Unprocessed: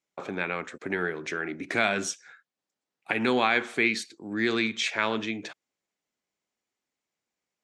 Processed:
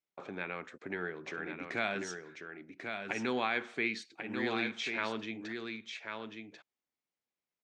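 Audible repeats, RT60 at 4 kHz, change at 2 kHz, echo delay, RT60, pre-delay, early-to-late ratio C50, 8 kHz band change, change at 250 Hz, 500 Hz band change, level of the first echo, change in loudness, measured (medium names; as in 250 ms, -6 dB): 1, no reverb, -8.0 dB, 1091 ms, no reverb, no reverb, no reverb, -13.0 dB, -8.0 dB, -8.0 dB, -6.0 dB, -9.5 dB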